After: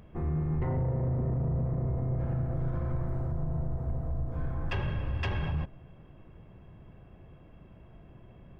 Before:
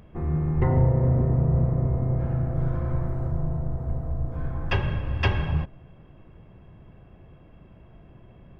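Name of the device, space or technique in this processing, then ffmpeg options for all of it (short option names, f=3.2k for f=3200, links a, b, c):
soft clipper into limiter: -af "asoftclip=type=tanh:threshold=-14.5dB,alimiter=limit=-21.5dB:level=0:latency=1:release=43,volume=-2.5dB"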